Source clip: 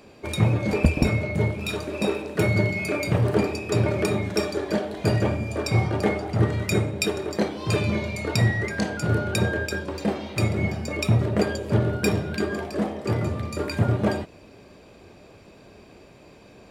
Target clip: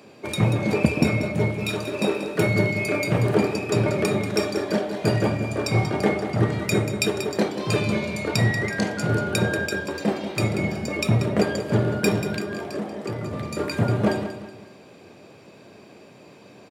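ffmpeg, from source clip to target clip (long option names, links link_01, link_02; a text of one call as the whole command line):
ffmpeg -i in.wav -filter_complex "[0:a]highpass=frequency=110:width=0.5412,highpass=frequency=110:width=1.3066,asettb=1/sr,asplit=3[link_01][link_02][link_03];[link_01]atrim=end=12.384[link_04];[link_02]atrim=start=12.38:end=13.33,asetpts=PTS-STARTPTS,afade=type=in:duration=0.004:curve=qsin,afade=type=out:start_time=0.946:duration=0.004:curve=qsin,acompressor=threshold=-29dB:ratio=4[link_05];[link_03]atrim=start=13.326[link_06];[link_04][link_05]acrossfade=duration=0.004:curve1=hsin:curve2=qsin[link_07];[link_07][link_06]acrossfade=duration=0.004:curve1=qsin:curve2=hsin,aecho=1:1:186|372|558|744:0.299|0.113|0.0431|0.0164,volume=1.5dB" out.wav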